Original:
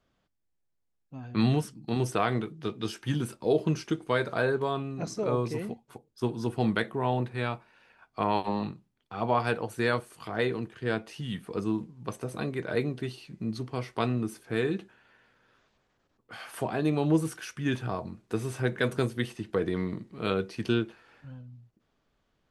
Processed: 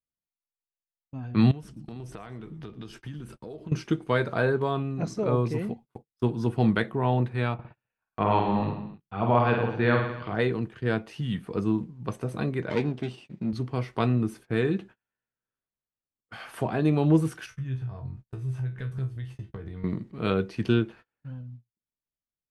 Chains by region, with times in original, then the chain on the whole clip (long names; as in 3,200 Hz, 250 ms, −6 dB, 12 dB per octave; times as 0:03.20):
0:01.51–0:03.72: downward compressor 8 to 1, threshold −40 dBFS + echo with shifted repeats 116 ms, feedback 45%, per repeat −94 Hz, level −17.5 dB
0:07.54–0:10.35: low-pass filter 3,700 Hz 24 dB per octave + reverse bouncing-ball delay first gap 50 ms, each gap 1.1×, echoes 5
0:12.70–0:13.53: lower of the sound and its delayed copy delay 0.36 ms + band-pass filter 150–7,800 Hz + parametric band 3,800 Hz +3.5 dB 0.24 octaves
0:17.46–0:19.84: low shelf with overshoot 160 Hz +13 dB, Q 1.5 + downward compressor, threshold −31 dBFS + tuned comb filter 66 Hz, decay 0.25 s, mix 90%
whole clip: noise gate −48 dBFS, range −32 dB; bass and treble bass +5 dB, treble −6 dB; level +1.5 dB